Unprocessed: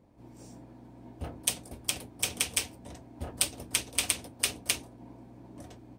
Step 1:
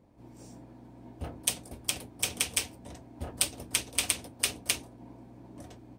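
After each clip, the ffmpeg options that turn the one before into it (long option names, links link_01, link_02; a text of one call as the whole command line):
ffmpeg -i in.wav -af anull out.wav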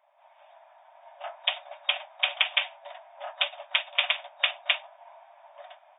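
ffmpeg -i in.wav -af "dynaudnorm=framelen=430:gausssize=5:maxgain=11.5dB,afftfilt=real='re*between(b*sr/4096,570,3700)':imag='im*between(b*sr/4096,570,3700)':win_size=4096:overlap=0.75,volume=5dB" out.wav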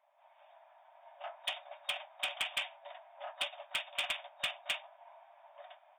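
ffmpeg -i in.wav -af "asoftclip=type=tanh:threshold=-21dB,volume=-6dB" out.wav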